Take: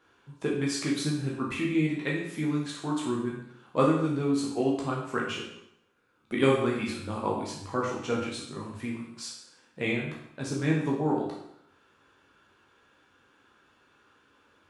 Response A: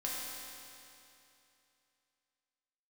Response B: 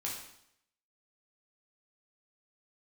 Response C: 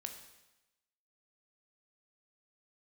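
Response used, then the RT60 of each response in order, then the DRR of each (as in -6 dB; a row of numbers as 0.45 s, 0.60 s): B; 2.8 s, 0.75 s, 1.0 s; -6.0 dB, -4.0 dB, 4.5 dB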